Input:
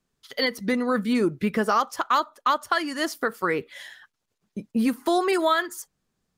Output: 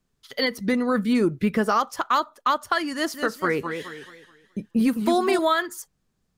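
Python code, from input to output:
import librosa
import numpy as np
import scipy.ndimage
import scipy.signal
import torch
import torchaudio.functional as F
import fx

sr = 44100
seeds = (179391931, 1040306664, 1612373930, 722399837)

y = fx.low_shelf(x, sr, hz=160.0, db=7.0)
y = fx.echo_warbled(y, sr, ms=213, feedback_pct=35, rate_hz=2.8, cents=156, wet_db=-7, at=(2.93, 5.39))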